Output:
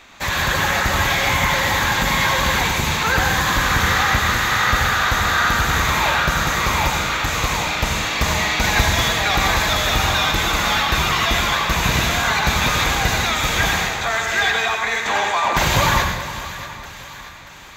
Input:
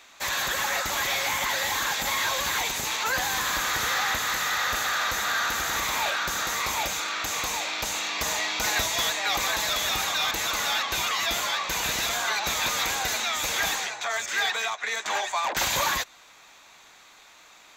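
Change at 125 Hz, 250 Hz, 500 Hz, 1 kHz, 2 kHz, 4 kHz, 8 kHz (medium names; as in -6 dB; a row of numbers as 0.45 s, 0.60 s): +22.0 dB, +16.0 dB, +10.0 dB, +9.5 dB, +9.0 dB, +6.0 dB, +3.0 dB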